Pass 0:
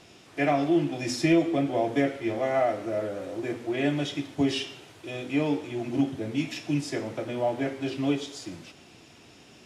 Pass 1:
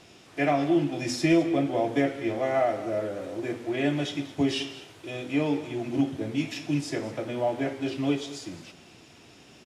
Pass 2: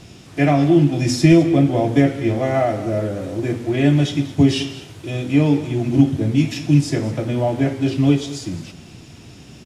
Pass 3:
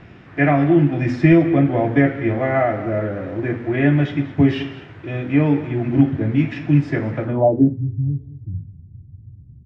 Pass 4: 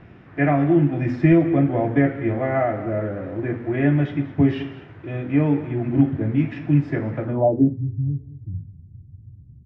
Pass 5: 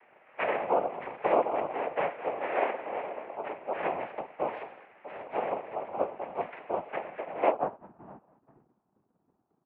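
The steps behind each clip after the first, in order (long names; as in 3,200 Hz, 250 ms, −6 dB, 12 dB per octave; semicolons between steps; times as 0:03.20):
single-tap delay 209 ms −16 dB
bass and treble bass +14 dB, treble +4 dB; level +5 dB
low-pass filter sweep 1,800 Hz → 100 Hz, 0:07.23–0:07.88; level −1 dB
high-shelf EQ 3,200 Hz −11 dB; level −2.5 dB
cochlear-implant simulation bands 4; single-sideband voice off tune −120 Hz 580–2,700 Hz; level −5 dB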